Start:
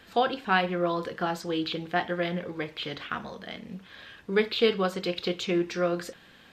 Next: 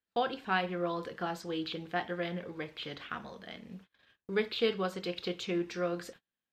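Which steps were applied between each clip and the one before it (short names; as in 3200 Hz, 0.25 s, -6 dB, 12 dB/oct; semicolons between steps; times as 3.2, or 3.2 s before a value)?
gate -44 dBFS, range -34 dB; gain -6.5 dB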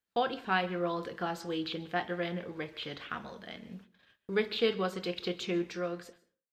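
ending faded out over 0.97 s; on a send at -19 dB: reverb RT60 0.35 s, pre-delay 0.122 s; on the sum: gain +1 dB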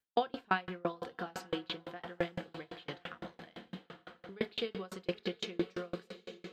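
diffused feedback echo 0.956 s, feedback 51%, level -11 dB; dB-ramp tremolo decaying 5.9 Hz, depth 34 dB; gain +3.5 dB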